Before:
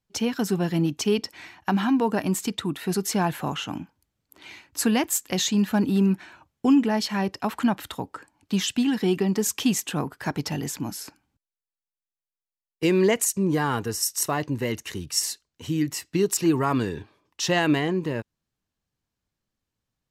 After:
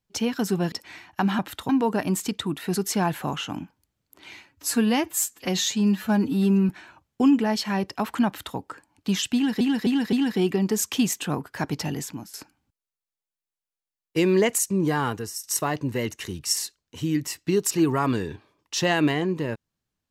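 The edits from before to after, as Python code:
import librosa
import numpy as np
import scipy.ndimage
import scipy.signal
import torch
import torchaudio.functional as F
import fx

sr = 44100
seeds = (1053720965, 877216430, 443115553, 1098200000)

y = fx.edit(x, sr, fx.cut(start_s=0.72, length_s=0.49),
    fx.stretch_span(start_s=4.65, length_s=1.49, factor=1.5),
    fx.duplicate(start_s=7.71, length_s=0.3, to_s=1.88),
    fx.repeat(start_s=8.79, length_s=0.26, count=4),
    fx.fade_out_to(start_s=10.61, length_s=0.39, floor_db=-13.5),
    fx.fade_out_to(start_s=13.71, length_s=0.39, floor_db=-12.0), tone=tone)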